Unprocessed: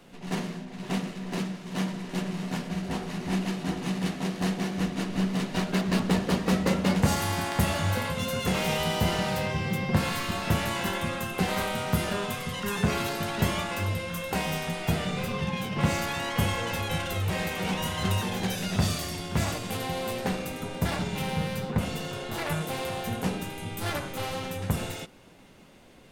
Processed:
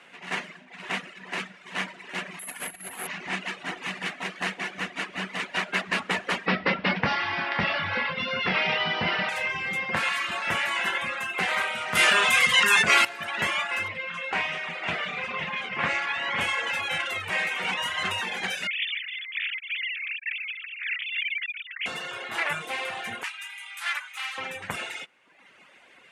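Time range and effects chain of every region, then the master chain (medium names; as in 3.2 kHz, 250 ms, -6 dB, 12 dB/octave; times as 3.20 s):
2.39–3.07 s: compressor with a negative ratio -37 dBFS + careless resampling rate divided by 4×, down filtered, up zero stuff
6.46–9.29 s: steep low-pass 5.5 kHz 96 dB/octave + peaking EQ 170 Hz +7 dB 2.4 oct
11.95–13.05 s: treble shelf 2.9 kHz +9 dB + level flattener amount 70%
13.88–16.41 s: distance through air 100 m + delay 505 ms -9.5 dB + loudspeaker Doppler distortion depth 0.25 ms
18.67–21.86 s: formants replaced by sine waves + steep high-pass 2.1 kHz
23.23–24.38 s: Bessel high-pass 1.4 kHz, order 8 + treble shelf 12 kHz +3 dB
whole clip: frequency weighting ITU-R 468; reverb removal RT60 1 s; resonant high shelf 3.2 kHz -13.5 dB, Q 1.5; trim +3 dB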